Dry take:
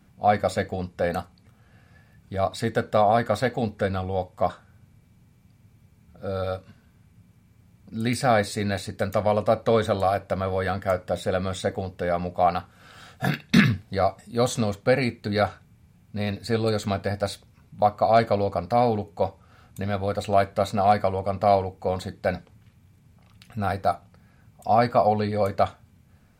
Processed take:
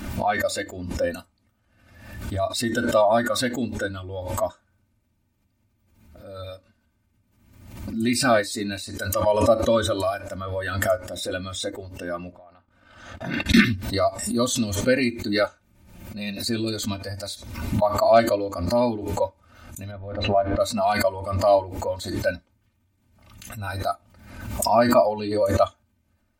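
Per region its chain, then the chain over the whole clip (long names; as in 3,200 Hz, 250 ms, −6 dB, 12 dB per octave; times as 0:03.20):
0:12.32–0:13.46: low-pass filter 1,900 Hz 6 dB per octave + downward compressor 3 to 1, threshold −40 dBFS + noise gate −51 dBFS, range −26 dB
0:15.43–0:16.48: parametric band 560 Hz +4 dB 0.27 octaves + comb filter 5.6 ms, depth 32% + upward compression, threshold −48 dBFS
0:19.91–0:20.60: mu-law and A-law mismatch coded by mu + head-to-tape spacing loss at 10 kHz 40 dB + mains-hum notches 60/120/180/240/300/360/420/480 Hz
whole clip: noise reduction from a noise print of the clip's start 13 dB; comb filter 3.3 ms, depth 91%; background raised ahead of every attack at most 59 dB per second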